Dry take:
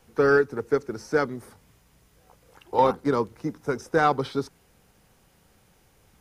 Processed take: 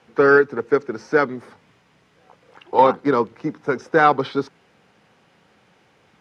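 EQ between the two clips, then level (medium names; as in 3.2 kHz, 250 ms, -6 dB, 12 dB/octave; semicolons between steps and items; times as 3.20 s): band-pass 160–2800 Hz; tilt EQ +2 dB/octave; bass shelf 210 Hz +6.5 dB; +6.5 dB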